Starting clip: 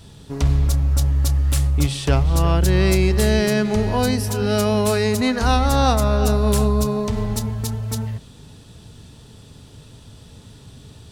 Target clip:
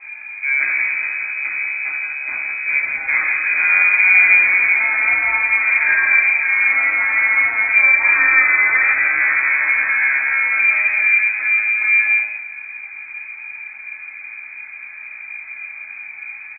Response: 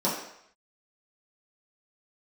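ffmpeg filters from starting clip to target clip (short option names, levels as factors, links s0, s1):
-filter_complex "[0:a]highpass=f=160:p=1,atempo=0.67,volume=25.1,asoftclip=hard,volume=0.0398,aecho=1:1:168:0.501[s0];[1:a]atrim=start_sample=2205,atrim=end_sample=4410[s1];[s0][s1]afir=irnorm=-1:irlink=0,lowpass=f=2200:t=q:w=0.5098,lowpass=f=2200:t=q:w=0.6013,lowpass=f=2200:t=q:w=0.9,lowpass=f=2200:t=q:w=2.563,afreqshift=-2600"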